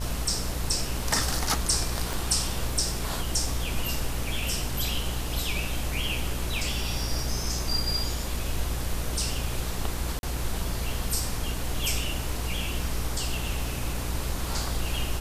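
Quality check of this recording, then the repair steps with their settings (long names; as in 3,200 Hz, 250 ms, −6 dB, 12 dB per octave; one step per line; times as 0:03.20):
mains buzz 60 Hz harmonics 33 −33 dBFS
0:02.13: click
0:10.19–0:10.23: drop-out 41 ms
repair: click removal
hum removal 60 Hz, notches 33
repair the gap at 0:10.19, 41 ms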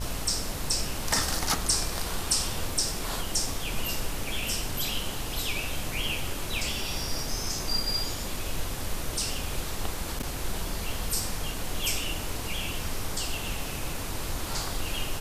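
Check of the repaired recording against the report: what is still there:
0:02.13: click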